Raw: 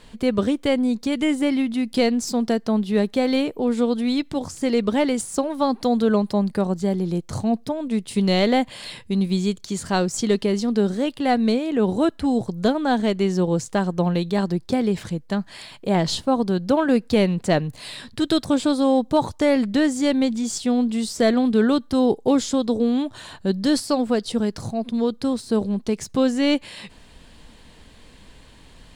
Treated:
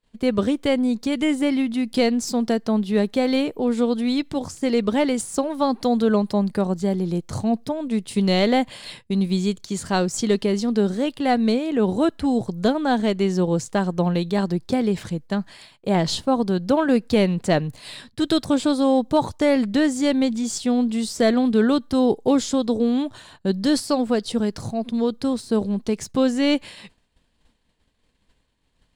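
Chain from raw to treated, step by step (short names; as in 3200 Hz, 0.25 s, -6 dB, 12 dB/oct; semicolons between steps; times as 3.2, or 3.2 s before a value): expander -33 dBFS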